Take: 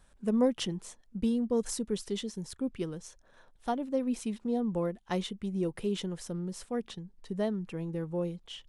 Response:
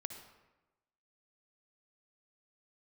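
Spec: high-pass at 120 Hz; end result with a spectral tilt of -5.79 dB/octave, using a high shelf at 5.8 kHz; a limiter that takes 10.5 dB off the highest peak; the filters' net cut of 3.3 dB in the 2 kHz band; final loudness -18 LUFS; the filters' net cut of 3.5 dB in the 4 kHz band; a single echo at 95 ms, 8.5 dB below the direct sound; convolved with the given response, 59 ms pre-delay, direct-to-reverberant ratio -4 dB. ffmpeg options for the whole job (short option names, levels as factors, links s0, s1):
-filter_complex "[0:a]highpass=120,equalizer=f=2000:t=o:g=-3.5,equalizer=f=4000:t=o:g=-6,highshelf=f=5800:g=7,alimiter=level_in=1.33:limit=0.0631:level=0:latency=1,volume=0.75,aecho=1:1:95:0.376,asplit=2[s0][s1];[1:a]atrim=start_sample=2205,adelay=59[s2];[s1][s2]afir=irnorm=-1:irlink=0,volume=2[s3];[s0][s3]amix=inputs=2:normalize=0,volume=3.98"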